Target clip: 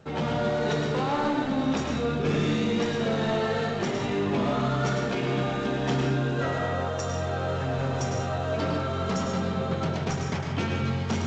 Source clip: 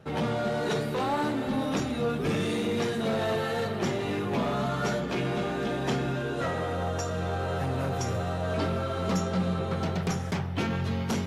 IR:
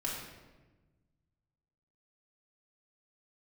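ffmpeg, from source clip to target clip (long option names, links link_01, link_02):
-filter_complex "[0:a]bandreject=frequency=60:width_type=h:width=6,bandreject=frequency=120:width_type=h:width=6,bandreject=frequency=180:width_type=h:width=6,asplit=2[link_01][link_02];[1:a]atrim=start_sample=2205,afade=type=out:start_time=0.18:duration=0.01,atrim=end_sample=8379,adelay=105[link_03];[link_02][link_03]afir=irnorm=-1:irlink=0,volume=-5dB[link_04];[link_01][link_04]amix=inputs=2:normalize=0" -ar 16000 -c:a g722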